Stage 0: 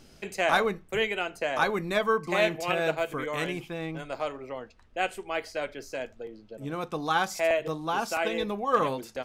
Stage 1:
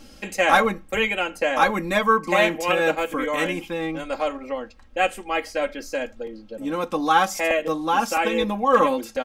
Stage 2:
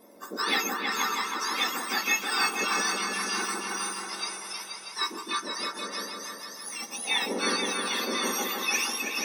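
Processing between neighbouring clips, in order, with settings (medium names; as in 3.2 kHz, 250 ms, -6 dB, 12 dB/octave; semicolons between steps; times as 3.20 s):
comb 3.7 ms, depth 87%; dynamic bell 4.2 kHz, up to -6 dB, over -50 dBFS, Q 3; trim +5 dB
spectrum inverted on a logarithmic axis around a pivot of 1.7 kHz; delay with an opening low-pass 160 ms, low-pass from 750 Hz, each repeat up 2 oct, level 0 dB; trim -5.5 dB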